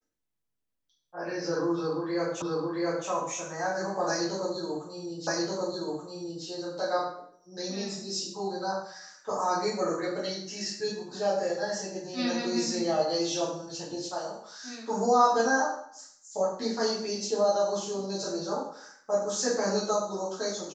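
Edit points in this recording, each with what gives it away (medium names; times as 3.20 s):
2.42 s: repeat of the last 0.67 s
5.27 s: repeat of the last 1.18 s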